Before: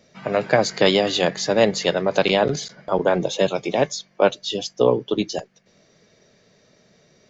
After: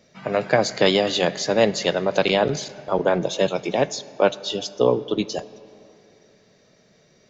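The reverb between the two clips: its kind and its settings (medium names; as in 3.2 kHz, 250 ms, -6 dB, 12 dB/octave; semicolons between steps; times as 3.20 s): algorithmic reverb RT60 2.9 s, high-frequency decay 0.65×, pre-delay 0 ms, DRR 17.5 dB; trim -1 dB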